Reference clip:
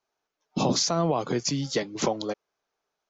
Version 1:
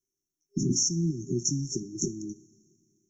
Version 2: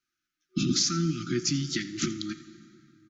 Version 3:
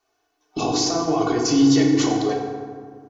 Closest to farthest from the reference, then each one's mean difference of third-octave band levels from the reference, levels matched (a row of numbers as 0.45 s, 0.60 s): 3, 2, 1; 7.5 dB, 10.5 dB, 16.0 dB